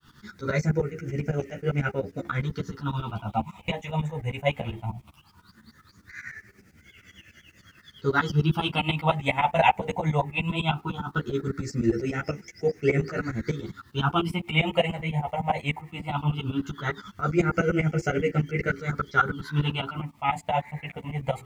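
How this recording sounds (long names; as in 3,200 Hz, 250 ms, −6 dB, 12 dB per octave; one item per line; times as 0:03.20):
phaser sweep stages 6, 0.18 Hz, lowest notch 360–1,000 Hz
a quantiser's noise floor 12 bits, dither none
tremolo saw up 10 Hz, depth 100%
a shimmering, thickened sound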